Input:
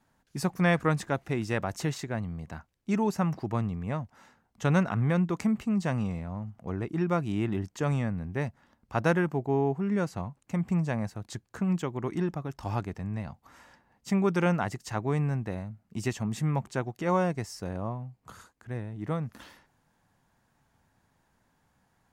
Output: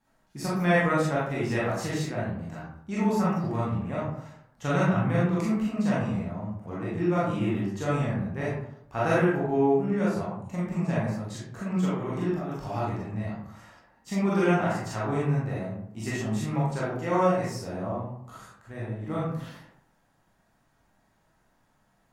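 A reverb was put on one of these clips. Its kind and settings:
comb and all-pass reverb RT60 0.74 s, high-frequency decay 0.5×, pre-delay 0 ms, DRR −8.5 dB
level −6 dB

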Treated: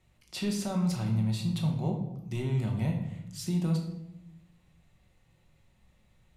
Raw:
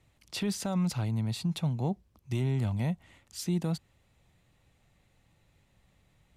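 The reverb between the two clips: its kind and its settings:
rectangular room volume 260 cubic metres, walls mixed, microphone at 1 metre
level −3 dB

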